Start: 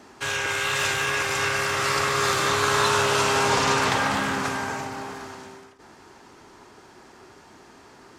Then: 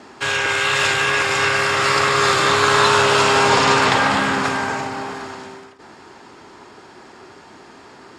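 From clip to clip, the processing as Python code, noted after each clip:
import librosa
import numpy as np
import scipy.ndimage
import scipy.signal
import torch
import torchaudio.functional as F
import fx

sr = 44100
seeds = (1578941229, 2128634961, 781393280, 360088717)

y = scipy.signal.sosfilt(scipy.signal.butter(2, 7600.0, 'lowpass', fs=sr, output='sos'), x)
y = fx.low_shelf(y, sr, hz=63.0, db=-11.5)
y = fx.notch(y, sr, hz=6000.0, q=9.7)
y = F.gain(torch.from_numpy(y), 7.0).numpy()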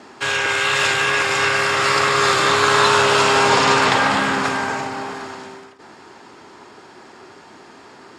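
y = fx.low_shelf(x, sr, hz=62.0, db=-10.5)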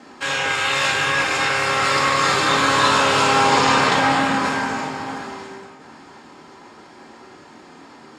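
y = x + 10.0 ** (-21.5 / 20.0) * np.pad(x, (int(936 * sr / 1000.0), 0))[:len(x)]
y = fx.room_shoebox(y, sr, seeds[0], volume_m3=290.0, walls='furnished', distance_m=2.1)
y = F.gain(torch.from_numpy(y), -4.5).numpy()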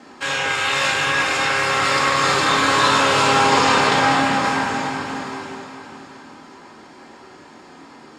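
y = fx.echo_feedback(x, sr, ms=411, feedback_pct=49, wet_db=-10)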